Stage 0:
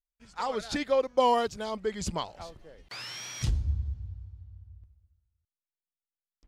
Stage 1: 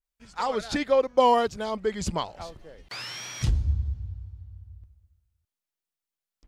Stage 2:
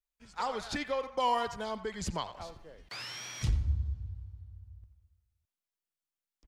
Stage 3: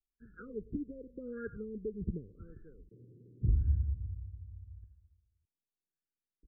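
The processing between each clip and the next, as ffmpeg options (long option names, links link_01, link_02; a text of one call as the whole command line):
ffmpeg -i in.wav -af "adynamicequalizer=threshold=0.00562:dfrequency=2800:dqfactor=0.7:tfrequency=2800:tqfactor=0.7:attack=5:release=100:ratio=0.375:range=2.5:mode=cutabove:tftype=highshelf,volume=4dB" out.wav
ffmpeg -i in.wav -filter_complex "[0:a]acrossover=split=140|830[link_01][link_02][link_03];[link_02]acompressor=threshold=-31dB:ratio=6[link_04];[link_03]asplit=2[link_05][link_06];[link_06]adelay=88,lowpass=frequency=1900:poles=1,volume=-8dB,asplit=2[link_07][link_08];[link_08]adelay=88,lowpass=frequency=1900:poles=1,volume=0.48,asplit=2[link_09][link_10];[link_10]adelay=88,lowpass=frequency=1900:poles=1,volume=0.48,asplit=2[link_11][link_12];[link_12]adelay=88,lowpass=frequency=1900:poles=1,volume=0.48,asplit=2[link_13][link_14];[link_14]adelay=88,lowpass=frequency=1900:poles=1,volume=0.48,asplit=2[link_15][link_16];[link_16]adelay=88,lowpass=frequency=1900:poles=1,volume=0.48[link_17];[link_05][link_07][link_09][link_11][link_13][link_15][link_17]amix=inputs=7:normalize=0[link_18];[link_01][link_04][link_18]amix=inputs=3:normalize=0,volume=-5dB" out.wav
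ffmpeg -i in.wav -af "asuperstop=centerf=830:order=12:qfactor=0.77,afftfilt=real='re*lt(b*sr/1024,570*pow(1800/570,0.5+0.5*sin(2*PI*0.87*pts/sr)))':imag='im*lt(b*sr/1024,570*pow(1800/570,0.5+0.5*sin(2*PI*0.87*pts/sr)))':win_size=1024:overlap=0.75,volume=1dB" out.wav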